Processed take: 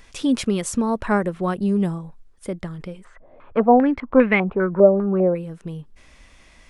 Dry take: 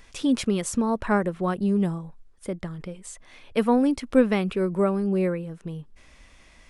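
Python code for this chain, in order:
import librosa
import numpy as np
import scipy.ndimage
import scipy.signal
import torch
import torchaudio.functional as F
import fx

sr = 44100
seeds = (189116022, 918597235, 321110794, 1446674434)

y = fx.filter_held_lowpass(x, sr, hz=5.0, low_hz=590.0, high_hz=2200.0, at=(3.03, 5.34), fade=0.02)
y = F.gain(torch.from_numpy(y), 2.5).numpy()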